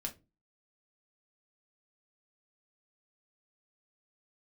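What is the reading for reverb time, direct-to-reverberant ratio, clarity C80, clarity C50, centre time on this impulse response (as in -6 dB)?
no single decay rate, 2.0 dB, 24.0 dB, 16.5 dB, 9 ms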